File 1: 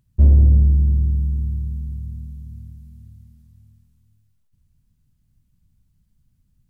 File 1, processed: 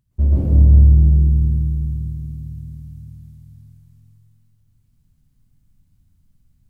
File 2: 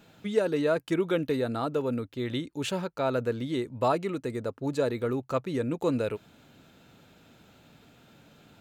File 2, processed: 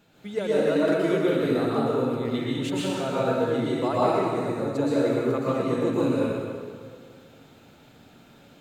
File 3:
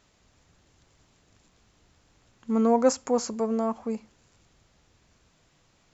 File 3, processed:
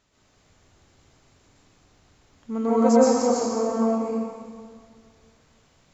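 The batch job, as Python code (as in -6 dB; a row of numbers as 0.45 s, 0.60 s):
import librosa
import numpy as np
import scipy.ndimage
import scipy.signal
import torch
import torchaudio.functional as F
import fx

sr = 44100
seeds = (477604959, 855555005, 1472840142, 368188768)

y = fx.rev_plate(x, sr, seeds[0], rt60_s=2.0, hf_ratio=0.75, predelay_ms=105, drr_db=-8.0)
y = F.gain(torch.from_numpy(y), -4.5).numpy()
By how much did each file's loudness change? +3.0 LU, +4.5 LU, +4.0 LU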